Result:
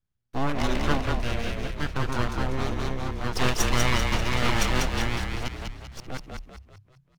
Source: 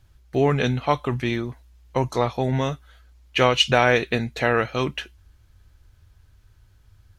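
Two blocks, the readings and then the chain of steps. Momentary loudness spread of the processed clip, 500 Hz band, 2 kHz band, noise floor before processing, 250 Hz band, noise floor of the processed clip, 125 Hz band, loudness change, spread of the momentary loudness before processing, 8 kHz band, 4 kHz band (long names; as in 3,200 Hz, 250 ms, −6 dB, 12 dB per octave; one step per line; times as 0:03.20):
15 LU, −9.0 dB, −4.0 dB, −56 dBFS, −3.5 dB, −67 dBFS, −2.5 dB, −5.0 dB, 12 LU, +6.0 dB, −5.0 dB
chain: delay that plays each chunk backwards 686 ms, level −3 dB
noise gate with hold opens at −41 dBFS
full-wave rectification
echo with shifted repeats 195 ms, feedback 45%, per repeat −34 Hz, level −3.5 dB
level −4.5 dB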